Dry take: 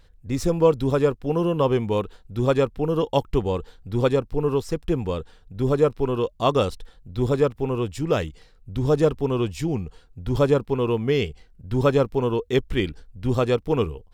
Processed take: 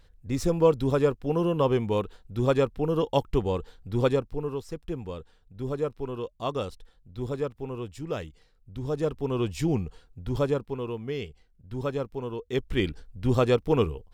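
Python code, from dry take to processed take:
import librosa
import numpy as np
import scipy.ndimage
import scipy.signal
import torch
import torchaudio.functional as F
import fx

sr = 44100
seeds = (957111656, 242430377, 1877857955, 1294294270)

y = fx.gain(x, sr, db=fx.line((4.11, -3.0), (4.53, -10.0), (8.92, -10.0), (9.7, 0.0), (10.95, -11.0), (12.36, -11.0), (12.87, -1.0)))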